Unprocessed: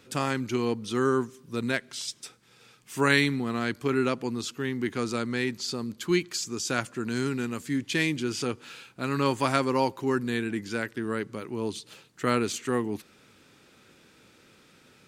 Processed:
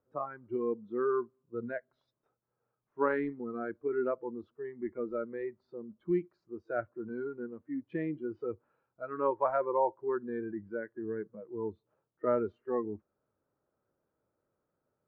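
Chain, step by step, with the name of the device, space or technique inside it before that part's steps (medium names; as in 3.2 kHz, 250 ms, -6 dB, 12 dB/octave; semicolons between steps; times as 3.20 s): peaking EQ 220 Hz -7 dB 1.2 oct; spectral noise reduction 19 dB; under water (low-pass 1.2 kHz 24 dB/octave; peaking EQ 610 Hz +8 dB 0.24 oct); trim -1.5 dB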